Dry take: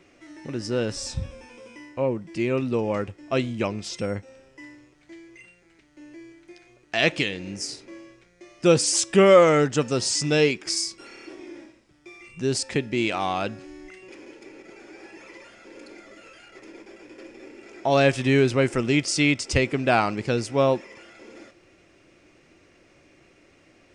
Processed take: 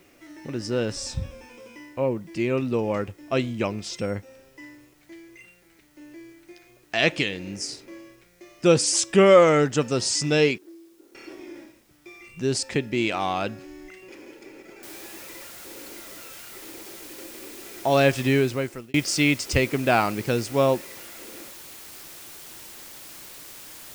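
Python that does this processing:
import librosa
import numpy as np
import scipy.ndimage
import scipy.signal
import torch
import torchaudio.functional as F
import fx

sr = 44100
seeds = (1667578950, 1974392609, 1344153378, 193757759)

y = fx.ladder_bandpass(x, sr, hz=360.0, resonance_pct=60, at=(10.58, 11.15))
y = fx.noise_floor_step(y, sr, seeds[0], at_s=14.83, before_db=-65, after_db=-43, tilt_db=0.0)
y = fx.edit(y, sr, fx.fade_out_span(start_s=18.25, length_s=0.69), tone=tone)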